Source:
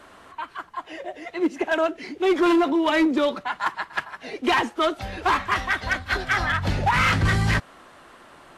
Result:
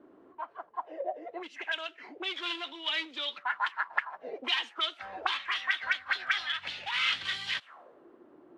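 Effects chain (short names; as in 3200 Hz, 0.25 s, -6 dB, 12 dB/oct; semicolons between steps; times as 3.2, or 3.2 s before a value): auto-wah 290–3300 Hz, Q 3.6, up, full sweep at -20 dBFS; gain +3 dB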